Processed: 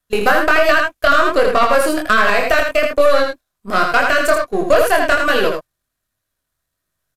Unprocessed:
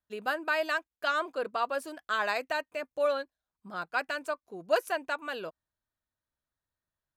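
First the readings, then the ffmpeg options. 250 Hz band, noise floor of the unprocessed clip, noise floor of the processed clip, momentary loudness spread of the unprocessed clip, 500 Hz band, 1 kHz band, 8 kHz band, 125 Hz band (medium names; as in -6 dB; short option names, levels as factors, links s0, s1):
+21.0 dB, under -85 dBFS, -77 dBFS, 10 LU, +18.0 dB, +17.0 dB, +20.5 dB, no reading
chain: -filter_complex "[0:a]aeval=exprs='if(lt(val(0),0),0.447*val(0),val(0))':c=same,agate=range=0.224:threshold=0.00447:ratio=16:detection=peak,acrossover=split=2600[s0][s1];[s1]acompressor=threshold=0.00501:ratio=4:attack=1:release=60[s2];[s0][s2]amix=inputs=2:normalize=0,highshelf=f=8000:g=8,acompressor=threshold=0.00891:ratio=2,flanger=delay=20:depth=5.9:speed=1.3,volume=35.5,asoftclip=hard,volume=0.0282,asplit=2[s3][s4];[s4]aecho=0:1:81:0.531[s5];[s3][s5]amix=inputs=2:normalize=0,aresample=32000,aresample=44100,asuperstop=centerf=880:order=4:qfactor=6.9,alimiter=level_in=37.6:limit=0.891:release=50:level=0:latency=1,volume=0.891"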